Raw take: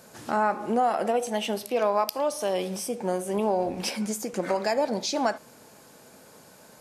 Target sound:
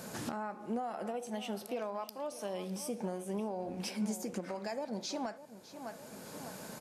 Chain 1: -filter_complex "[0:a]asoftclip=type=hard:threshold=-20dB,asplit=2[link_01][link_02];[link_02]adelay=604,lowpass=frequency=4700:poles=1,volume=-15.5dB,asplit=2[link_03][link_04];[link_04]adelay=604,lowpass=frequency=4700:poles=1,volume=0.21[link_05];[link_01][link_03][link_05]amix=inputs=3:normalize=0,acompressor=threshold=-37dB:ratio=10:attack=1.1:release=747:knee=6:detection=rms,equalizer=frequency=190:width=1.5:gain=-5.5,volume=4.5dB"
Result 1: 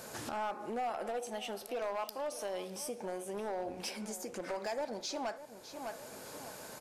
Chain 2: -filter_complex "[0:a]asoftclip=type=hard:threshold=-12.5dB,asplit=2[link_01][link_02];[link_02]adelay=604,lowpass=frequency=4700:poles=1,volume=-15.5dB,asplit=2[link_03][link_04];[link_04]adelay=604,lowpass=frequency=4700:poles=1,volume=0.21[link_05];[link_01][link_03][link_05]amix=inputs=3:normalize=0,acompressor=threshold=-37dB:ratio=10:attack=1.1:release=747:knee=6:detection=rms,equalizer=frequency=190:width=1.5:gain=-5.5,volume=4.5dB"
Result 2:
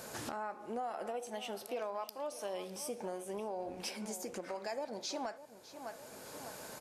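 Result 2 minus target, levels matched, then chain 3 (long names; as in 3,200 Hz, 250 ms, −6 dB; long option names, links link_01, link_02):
250 Hz band −5.5 dB
-filter_complex "[0:a]asoftclip=type=hard:threshold=-12.5dB,asplit=2[link_01][link_02];[link_02]adelay=604,lowpass=frequency=4700:poles=1,volume=-15.5dB,asplit=2[link_03][link_04];[link_04]adelay=604,lowpass=frequency=4700:poles=1,volume=0.21[link_05];[link_01][link_03][link_05]amix=inputs=3:normalize=0,acompressor=threshold=-37dB:ratio=10:attack=1.1:release=747:knee=6:detection=rms,equalizer=frequency=190:width=1.5:gain=5.5,volume=4.5dB"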